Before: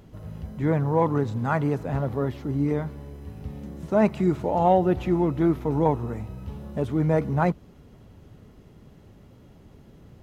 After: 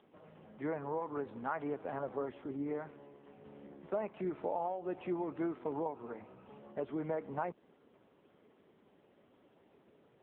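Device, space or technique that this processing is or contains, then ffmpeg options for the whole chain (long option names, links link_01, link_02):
voicemail: -af "highpass=380,lowpass=3100,acompressor=threshold=-26dB:ratio=12,volume=-5dB" -ar 8000 -c:a libopencore_amrnb -b:a 6700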